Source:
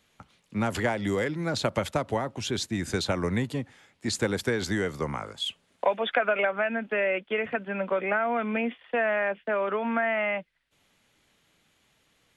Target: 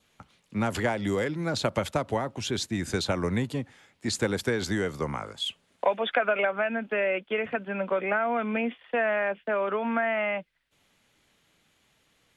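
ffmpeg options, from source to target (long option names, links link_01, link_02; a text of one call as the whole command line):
ffmpeg -i in.wav -af "adynamicequalizer=threshold=0.00501:dfrequency=1900:dqfactor=5.3:tfrequency=1900:tqfactor=5.3:attack=5:release=100:ratio=0.375:range=2:mode=cutabove:tftype=bell" out.wav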